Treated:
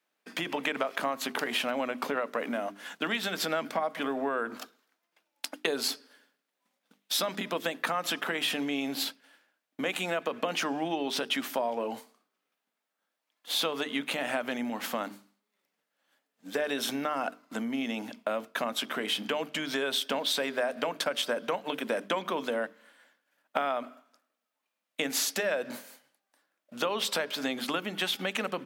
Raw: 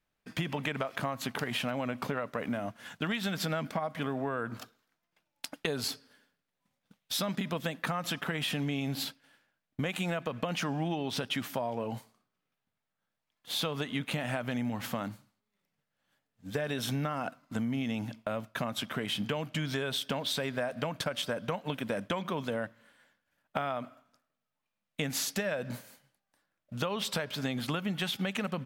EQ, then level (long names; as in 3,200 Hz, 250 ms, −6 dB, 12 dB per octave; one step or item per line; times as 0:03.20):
high-pass filter 250 Hz 24 dB per octave
mains-hum notches 50/100/150/200/250/300/350/400/450 Hz
+4.0 dB